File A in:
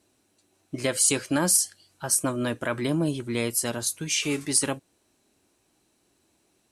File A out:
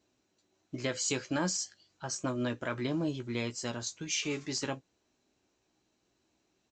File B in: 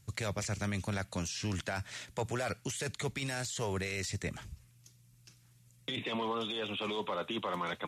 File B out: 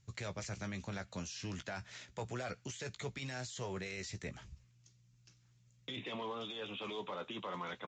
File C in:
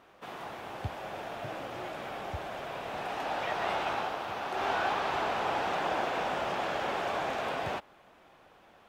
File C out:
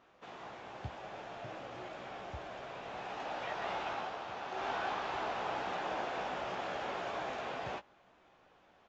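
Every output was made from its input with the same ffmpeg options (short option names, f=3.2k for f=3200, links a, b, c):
-filter_complex "[0:a]acrusher=bits=8:mode=log:mix=0:aa=0.000001,aresample=16000,aresample=44100,asplit=2[a][b];[b]adelay=16,volume=-9dB[c];[a][c]amix=inputs=2:normalize=0,volume=-7dB"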